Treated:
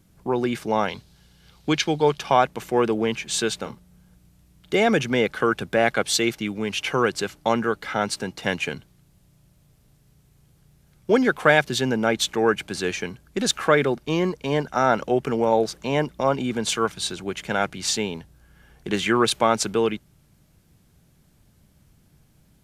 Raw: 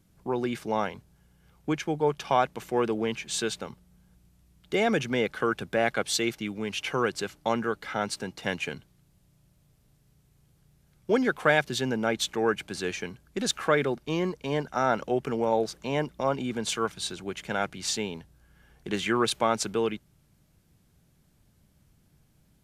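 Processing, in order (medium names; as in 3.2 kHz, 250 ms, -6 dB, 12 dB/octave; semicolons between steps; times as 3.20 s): 0.88–2.19 s: peaking EQ 4.1 kHz +14 dB 1.2 oct; 3.60–4.77 s: doubling 40 ms -11.5 dB; trim +5.5 dB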